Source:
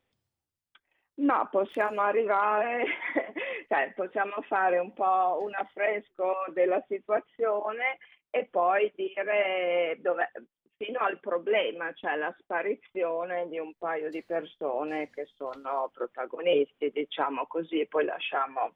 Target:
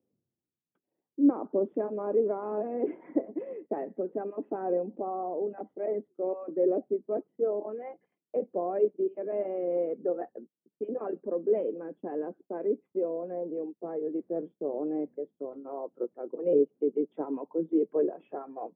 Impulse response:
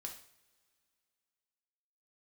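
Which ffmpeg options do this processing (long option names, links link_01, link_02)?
-af "asuperpass=centerf=260:order=4:qfactor=0.9,volume=4.5dB"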